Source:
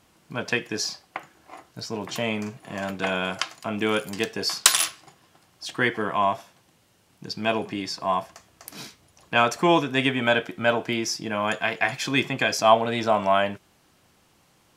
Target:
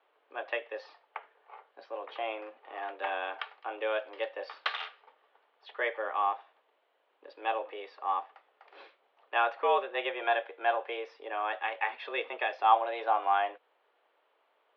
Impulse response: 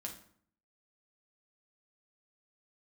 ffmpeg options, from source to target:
-af "aemphasis=mode=reproduction:type=riaa,highpass=f=400:t=q:w=0.5412,highpass=f=400:t=q:w=1.307,lowpass=f=3600:t=q:w=0.5176,lowpass=f=3600:t=q:w=0.7071,lowpass=f=3600:t=q:w=1.932,afreqshift=110,volume=0.447"

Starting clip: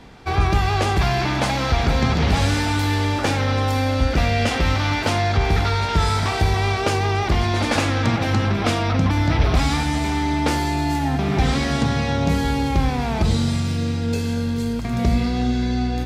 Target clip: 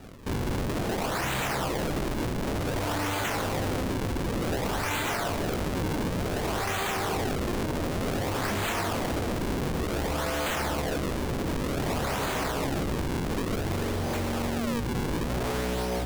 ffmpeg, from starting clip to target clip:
-af "acrusher=samples=40:mix=1:aa=0.000001:lfo=1:lforange=64:lforate=0.55,bandreject=f=50:t=h:w=6,bandreject=f=100:t=h:w=6,bandreject=f=150:t=h:w=6,bandreject=f=200:t=h:w=6,bandreject=f=250:t=h:w=6,bandreject=f=300:t=h:w=6,aeval=exprs='0.0708*(abs(mod(val(0)/0.0708+3,4)-2)-1)':c=same,volume=0.891"

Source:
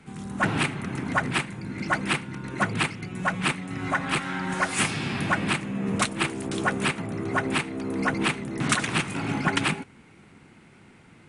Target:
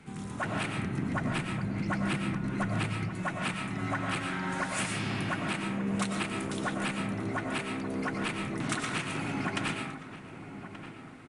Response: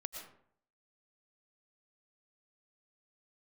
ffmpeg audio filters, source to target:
-filter_complex "[0:a]asettb=1/sr,asplit=3[s0][s1][s2];[s0]atrim=end=0.784[s3];[s1]atrim=start=0.78:end=3.1,asetpts=PTS-STARTPTS,afade=t=in:d=0.004:c=qsin,afade=t=out:st=2.316:d=0.004:c=qsin,lowshelf=f=270:g=10[s4];[s2]atrim=start=3.096[s5];[s3][s4]acrossfade=d=0.004:c1=hsin:c2=qsin[s6];[s6][s5]acrossfade=d=0.004:c1=qsin:c2=hsin,acompressor=threshold=0.0251:ratio=2.5,asplit=2[s7][s8];[s8]adelay=1179,lowpass=f=1500:p=1,volume=0.282,asplit=2[s9][s10];[s10]adelay=1179,lowpass=f=1500:p=1,volume=0.5,asplit=2[s11][s12];[s12]adelay=1179,lowpass=f=1500:p=1,volume=0.5,asplit=2[s13][s14];[s14]adelay=1179,lowpass=f=1500:p=1,volume=0.5,asplit=2[s15][s16];[s16]adelay=1179,lowpass=f=1500:p=1,volume=0.5[s17];[s7][s9][s11][s13][s15][s17]amix=inputs=6:normalize=0[s18];[1:a]atrim=start_sample=2205[s19];[s18][s19]afir=irnorm=-1:irlink=0,volume=1.26"

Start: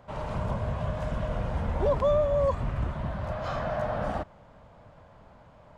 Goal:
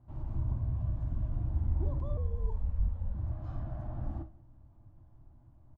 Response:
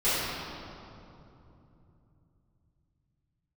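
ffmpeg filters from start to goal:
-filter_complex "[0:a]firequalizer=gain_entry='entry(120,0);entry(170,-16);entry(320,-2);entry(460,-29);entry(740,-19);entry(1300,-25);entry(2300,-29);entry(6100,-27)':delay=0.05:min_phase=1,aecho=1:1:183:0.0708,asplit=2[s0][s1];[1:a]atrim=start_sample=2205,atrim=end_sample=3528[s2];[s1][s2]afir=irnorm=-1:irlink=0,volume=0.133[s3];[s0][s3]amix=inputs=2:normalize=0,asettb=1/sr,asplit=3[s4][s5][s6];[s4]atrim=end=2.174[s7];[s5]atrim=start=2.17:end=3.15,asetpts=PTS-STARTPTS,afade=t=in:d=0.004:c=qsin,afade=t=out:st=0.976:d=0.004:c=qsin,afreqshift=-110[s8];[s6]atrim=start=3.146[s9];[s7][s8]acrossfade=d=0.004:c1=hsin:c2=qsin[s10];[s10][s9]acrossfade=d=0.004:c1=qsin:c2=hsin"

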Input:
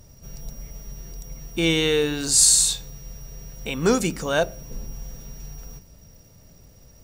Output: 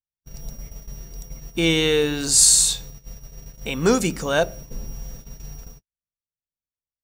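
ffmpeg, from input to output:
-af "agate=range=0.00141:threshold=0.0141:ratio=16:detection=peak,volume=1.19"

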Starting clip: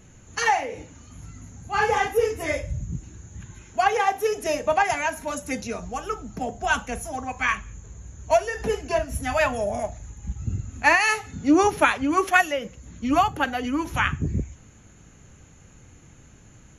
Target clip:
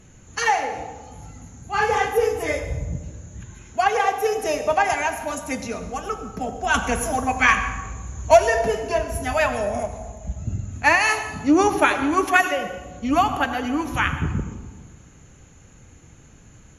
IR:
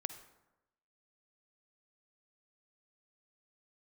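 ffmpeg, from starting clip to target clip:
-filter_complex "[0:a]asettb=1/sr,asplit=3[s0][s1][s2];[s0]atrim=end=6.744[s3];[s1]atrim=start=6.74:end=8.59,asetpts=PTS-STARTPTS,afade=t=in:d=0.004:c=qsin,afade=t=out:st=1.846:d=0.004:c=qsin,acontrast=63[s4];[s2]atrim=start=8.586[s5];[s3][s4]acrossfade=d=0.004:c1=hsin:c2=qsin[s6];[s6][s5]acrossfade=d=0.004:c1=qsin:c2=hsin[s7];[1:a]atrim=start_sample=2205,asetrate=27342,aresample=44100[s8];[s7][s8]afir=irnorm=-1:irlink=0"

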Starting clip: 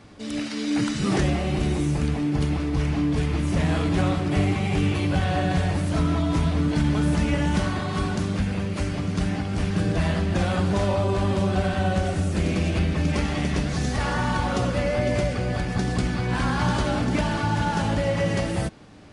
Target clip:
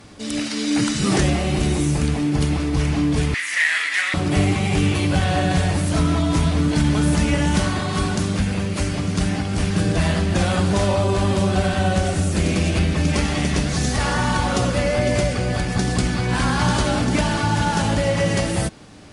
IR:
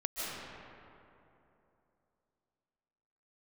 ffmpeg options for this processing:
-filter_complex "[0:a]asettb=1/sr,asplit=3[s0][s1][s2];[s0]atrim=end=3.344[s3];[s1]atrim=start=3.34:end=4.14,asetpts=PTS-STARTPTS,afade=t=in:d=0.004:c=qsin,afade=t=out:st=0.796:d=0.004:c=qsin,highpass=f=1900:t=q:w=7.8[s4];[s2]atrim=start=4.136[s5];[s3][s4]acrossfade=d=0.004:c1=hsin:c2=qsin[s6];[s6][s5]acrossfade=d=0.004:c1=qsin:c2=hsin,aemphasis=mode=production:type=cd,volume=1.58"

